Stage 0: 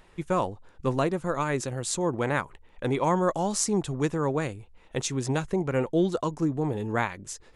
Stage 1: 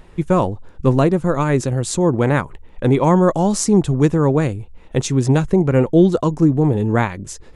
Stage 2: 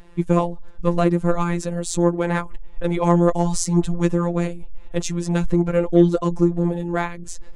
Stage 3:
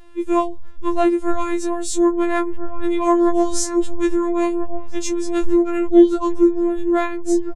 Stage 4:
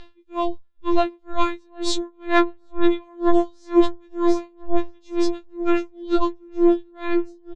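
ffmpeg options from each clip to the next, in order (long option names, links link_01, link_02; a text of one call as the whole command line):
ffmpeg -i in.wav -af "lowshelf=frequency=470:gain=10,volume=5dB" out.wav
ffmpeg -i in.wav -af "afftfilt=real='hypot(re,im)*cos(PI*b)':imag='0':win_size=1024:overlap=0.75,aeval=exprs='0.944*(cos(1*acos(clip(val(0)/0.944,-1,1)))-cos(1*PI/2))+0.0133*(cos(8*acos(clip(val(0)/0.944,-1,1)))-cos(8*PI/2))':channel_layout=same,asubboost=boost=4:cutoff=65" out.wav
ffmpeg -i in.wav -filter_complex "[0:a]asplit=2[link_01][link_02];[link_02]adelay=1341,volume=-8dB,highshelf=frequency=4000:gain=-30.2[link_03];[link_01][link_03]amix=inputs=2:normalize=0,afftfilt=real='re*4*eq(mod(b,16),0)':imag='im*4*eq(mod(b,16),0)':win_size=2048:overlap=0.75,volume=-4.5dB" out.wav
ffmpeg -i in.wav -af "lowpass=frequency=4000:width_type=q:width=2.5,aecho=1:1:746|1492|2238|2984:0.188|0.0772|0.0317|0.013,aeval=exprs='val(0)*pow(10,-38*(0.5-0.5*cos(2*PI*2.1*n/s))/20)':channel_layout=same,volume=3.5dB" out.wav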